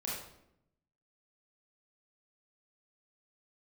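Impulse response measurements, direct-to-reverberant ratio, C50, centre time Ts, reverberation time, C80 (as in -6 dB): -5.5 dB, 0.0 dB, 59 ms, 0.80 s, 4.5 dB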